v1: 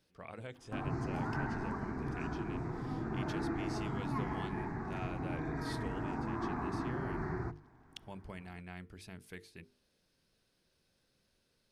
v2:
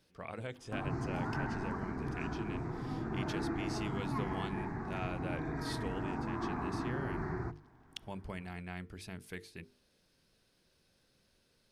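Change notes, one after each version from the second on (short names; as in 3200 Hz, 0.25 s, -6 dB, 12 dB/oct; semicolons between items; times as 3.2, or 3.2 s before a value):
speech +4.0 dB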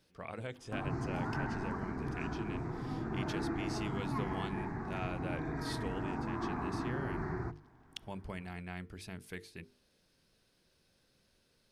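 none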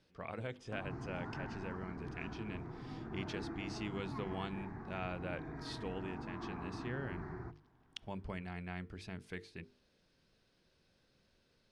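background -7.5 dB; master: add air absorption 79 m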